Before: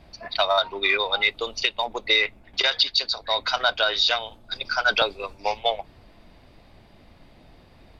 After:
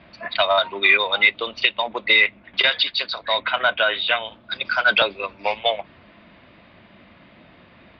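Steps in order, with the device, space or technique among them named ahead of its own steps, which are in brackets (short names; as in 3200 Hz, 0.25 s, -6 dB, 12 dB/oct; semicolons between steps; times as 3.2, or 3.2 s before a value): 3.4–4.25 inverse Chebyshev low-pass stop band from 6300 Hz, stop band 40 dB; overdrive pedal into a guitar cabinet (overdrive pedal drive 10 dB, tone 3800 Hz, clips at -4 dBFS; speaker cabinet 76–3400 Hz, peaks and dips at 200 Hz +6 dB, 440 Hz -6 dB, 800 Hz -9 dB); dynamic EQ 1300 Hz, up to -5 dB, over -35 dBFS, Q 2.1; gain +4.5 dB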